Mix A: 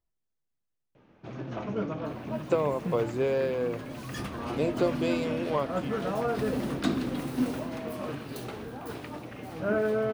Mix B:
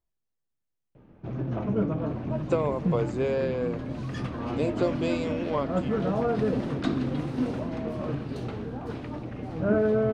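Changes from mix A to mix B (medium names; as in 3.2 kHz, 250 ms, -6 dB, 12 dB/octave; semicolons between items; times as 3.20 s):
first sound: add tilt EQ -3 dB/octave; second sound: add distance through air 97 m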